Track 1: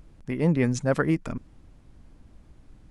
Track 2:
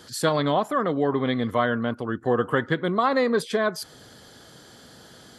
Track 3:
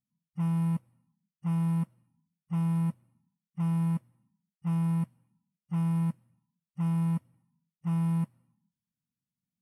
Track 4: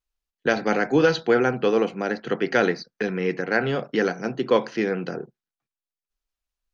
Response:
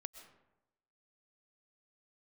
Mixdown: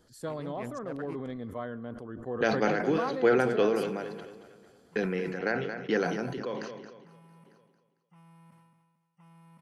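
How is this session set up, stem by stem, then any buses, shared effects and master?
-18.5 dB, 0.00 s, send -6 dB, no echo send, local Wiener filter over 25 samples; bass shelf 460 Hz -9.5 dB
-16.0 dB, 0.00 s, send -7 dB, no echo send, FFT filter 400 Hz 0 dB, 3.8 kHz -10 dB, 7.4 kHz -5 dB
-14.5 dB, 2.40 s, no send, echo send -21 dB, frequency weighting A; peak limiter -35.5 dBFS, peak gain reduction 4.5 dB
-5.0 dB, 1.95 s, no send, echo send -13 dB, gate -38 dBFS, range -40 dB; endings held to a fixed fall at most 110 dB/s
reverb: on, RT60 0.95 s, pre-delay 85 ms
echo: feedback delay 225 ms, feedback 47%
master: peaking EQ 550 Hz +2 dB; decay stretcher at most 38 dB/s

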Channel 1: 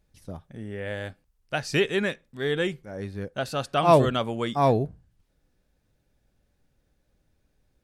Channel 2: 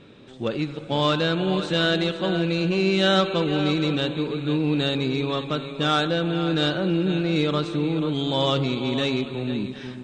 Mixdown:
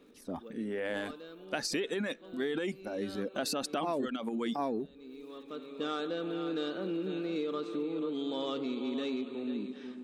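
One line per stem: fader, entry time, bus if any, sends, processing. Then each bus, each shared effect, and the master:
+0.5 dB, 0.00 s, no send, reverb removal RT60 0.83 s; transient shaper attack -3 dB, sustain +11 dB
-14.0 dB, 0.00 s, no send, small resonant body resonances 450/1200 Hz, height 9 dB; auto duck -15 dB, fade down 0.45 s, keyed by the first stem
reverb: none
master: resonant low shelf 170 Hz -12.5 dB, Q 3; compression 16:1, threshold -30 dBFS, peak gain reduction 21.5 dB

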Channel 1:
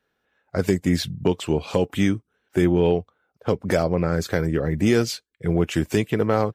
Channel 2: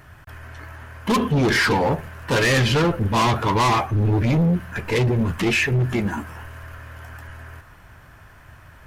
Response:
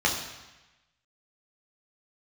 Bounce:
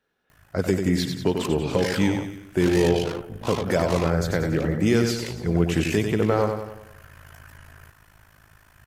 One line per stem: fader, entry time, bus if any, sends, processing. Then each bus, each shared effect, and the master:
-2.0 dB, 0.00 s, no send, echo send -6 dB, none
-5.0 dB, 0.30 s, no send, no echo send, AM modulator 53 Hz, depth 75%; treble shelf 3.5 kHz +10 dB; auto duck -7 dB, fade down 0.90 s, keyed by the first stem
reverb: none
echo: feedback delay 94 ms, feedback 50%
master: none

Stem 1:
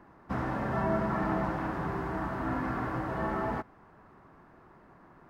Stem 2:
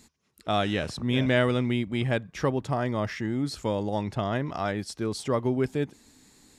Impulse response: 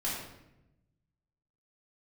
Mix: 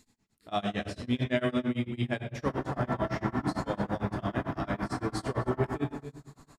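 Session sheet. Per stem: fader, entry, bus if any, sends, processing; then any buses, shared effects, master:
-4.5 dB, 2.15 s, send -5.5 dB, echo send -5 dB, none
-8.0 dB, 0.00 s, send -3.5 dB, echo send -11 dB, none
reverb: on, RT60 0.90 s, pre-delay 3 ms
echo: delay 271 ms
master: tremolo 8.9 Hz, depth 97%

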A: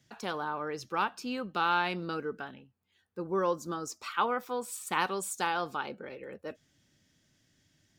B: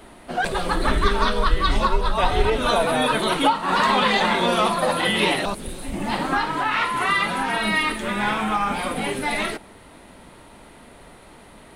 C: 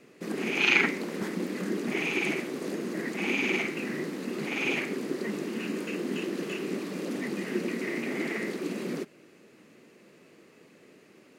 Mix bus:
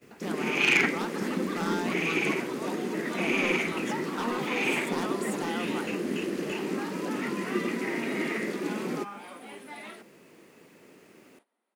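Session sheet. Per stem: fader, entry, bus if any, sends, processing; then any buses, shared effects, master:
-5.0 dB, 0.00 s, no send, peaking EQ 73 Hz +14.5 dB 2.2 oct; wavefolder -23.5 dBFS
-18.0 dB, 0.45 s, no send, Chebyshev high-pass 200 Hz, order 8
+1.0 dB, 0.00 s, no send, bit crusher 11-bit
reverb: none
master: gate -58 dBFS, range -16 dB; peaking EQ 4 kHz -3 dB 0.32 oct; hard clipper -14.5 dBFS, distortion -23 dB

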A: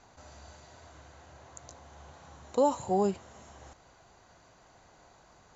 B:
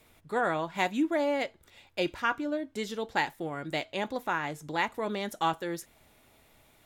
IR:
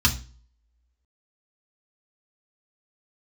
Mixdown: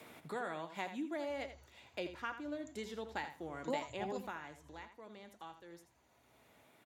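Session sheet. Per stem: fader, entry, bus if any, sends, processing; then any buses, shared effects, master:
-15.0 dB, 1.10 s, send -17.5 dB, no echo send, vibrato 1.5 Hz 31 cents; reverb removal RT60 1.2 s; bass shelf 120 Hz -9 dB
4.16 s -12.5 dB -> 4.71 s -22.5 dB, 0.00 s, no send, echo send -10.5 dB, high-pass 130 Hz; treble shelf 12 kHz -3 dB; three bands compressed up and down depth 70%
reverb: on, RT60 0.35 s, pre-delay 3 ms
echo: feedback delay 82 ms, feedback 15%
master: none

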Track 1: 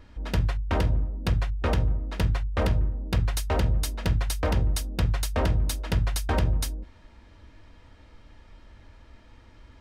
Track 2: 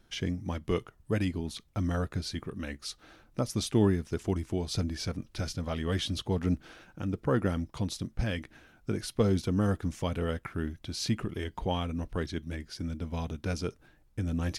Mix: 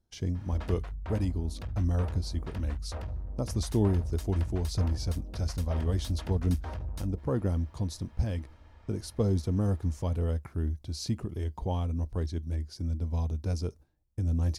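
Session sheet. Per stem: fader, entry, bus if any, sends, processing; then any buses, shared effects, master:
+1.5 dB, 0.35 s, no send, peaking EQ 830 Hz +7.5 dB 2 oct; peak limiter -22.5 dBFS, peak gain reduction 12 dB; saturation -27.5 dBFS, distortion -15 dB; auto duck -10 dB, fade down 0.85 s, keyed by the second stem
-3.0 dB, 0.00 s, no send, gate -48 dBFS, range -12 dB; high-order bell 2.1 kHz -9 dB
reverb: none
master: peaking EQ 75 Hz +13 dB 0.66 oct

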